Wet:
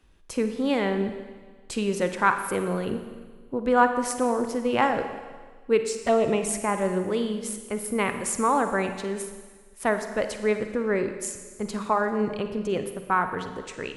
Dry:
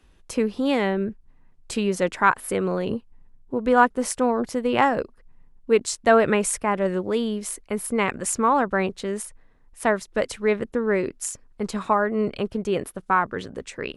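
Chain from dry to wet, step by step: 5.79–6.49 s: touch-sensitive flanger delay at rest 2.7 ms, full sweep at -15 dBFS; Schroeder reverb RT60 1.5 s, DRR 7.5 dB; trim -3 dB

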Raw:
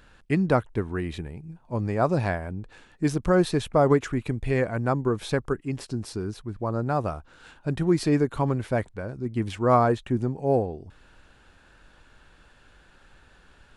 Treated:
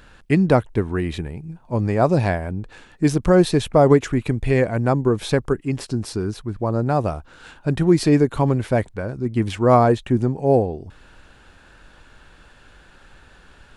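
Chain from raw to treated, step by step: dynamic bell 1.3 kHz, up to -5 dB, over -39 dBFS, Q 1.7; trim +6.5 dB

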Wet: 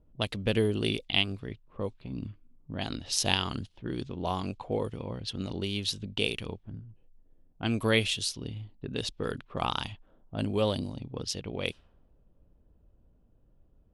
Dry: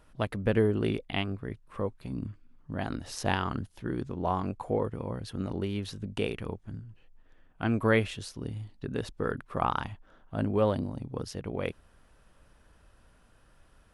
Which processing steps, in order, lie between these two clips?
resonant high shelf 2.3 kHz +11.5 dB, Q 1.5; level-controlled noise filter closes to 390 Hz, open at -26 dBFS; trim -1.5 dB

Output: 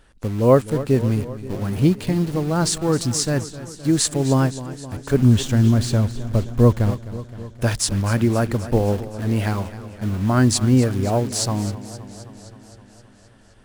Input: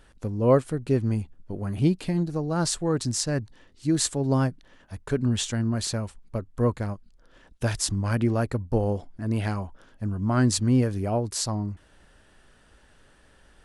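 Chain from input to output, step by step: 5.14–6.91 s: tilt EQ -2 dB/octave; in parallel at -4 dB: word length cut 6-bit, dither none; on the sum: modulated delay 261 ms, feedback 68%, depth 90 cents, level -15 dB; trim +1 dB

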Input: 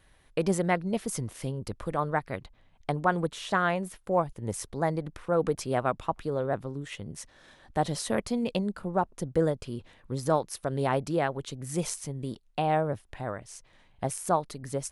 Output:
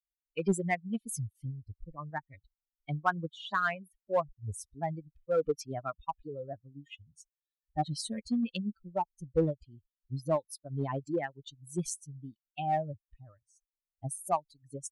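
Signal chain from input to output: expander on every frequency bin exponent 3; 1.45–2.11 s: boxcar filter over 29 samples; in parallel at -8 dB: hard clipper -28.5 dBFS, distortion -10 dB

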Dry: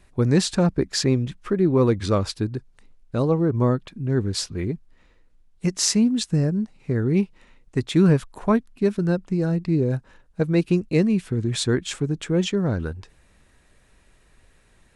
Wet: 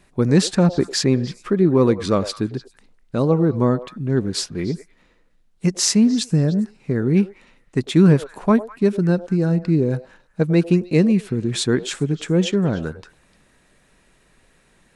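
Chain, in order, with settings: resonant low shelf 120 Hz -6.5 dB, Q 1.5; repeats whose band climbs or falls 100 ms, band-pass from 590 Hz, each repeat 1.4 oct, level -10.5 dB; trim +2.5 dB

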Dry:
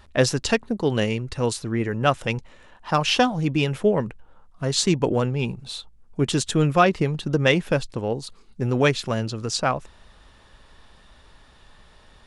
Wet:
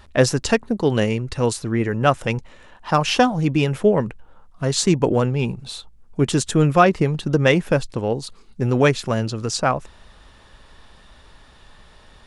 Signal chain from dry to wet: dynamic bell 3.5 kHz, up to -5 dB, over -37 dBFS, Q 1.1; trim +3.5 dB

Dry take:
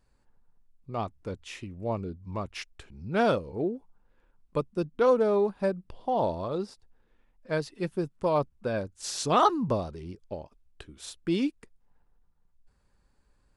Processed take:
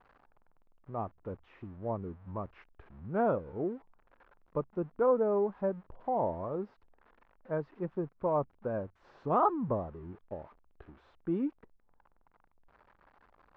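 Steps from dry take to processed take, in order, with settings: zero-crossing glitches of -27 dBFS; four-pole ladder low-pass 1.5 kHz, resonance 20%

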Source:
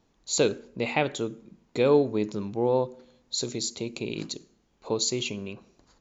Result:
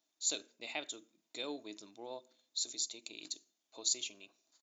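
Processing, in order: differentiator; tempo 1.3×; small resonant body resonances 300/640/3600 Hz, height 13 dB, ringing for 45 ms; trim -2.5 dB

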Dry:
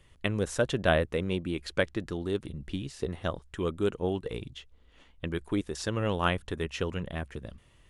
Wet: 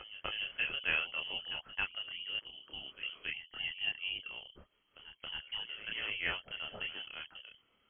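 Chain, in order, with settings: high-pass 240 Hz 6 dB/octave; frequency inversion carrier 3.2 kHz; chorus voices 2, 0.84 Hz, delay 28 ms, depth 1.2 ms; reverse echo 273 ms -11 dB; trim -4.5 dB

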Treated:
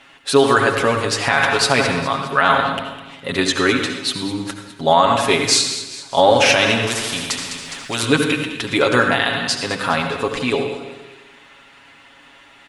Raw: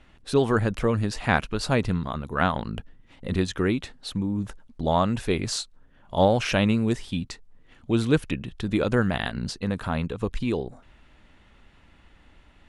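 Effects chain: high-pass 910 Hz 6 dB/octave; comb 7.3 ms, depth 72%; two-band feedback delay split 2.2 kHz, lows 86 ms, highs 206 ms, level -13.5 dB; reverberation RT60 1.1 s, pre-delay 66 ms, DRR 6.5 dB; loudness maximiser +14 dB; 6.87–8.03 s: spectrum-flattening compressor 2:1; trim -1 dB

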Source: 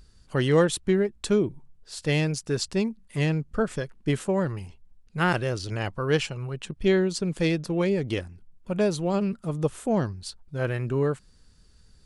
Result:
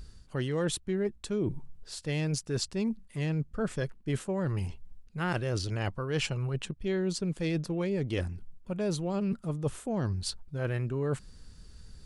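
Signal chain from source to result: bass shelf 240 Hz +4 dB; reverse; compression 6:1, threshold -32 dBFS, peak gain reduction 16.5 dB; reverse; trim +3.5 dB

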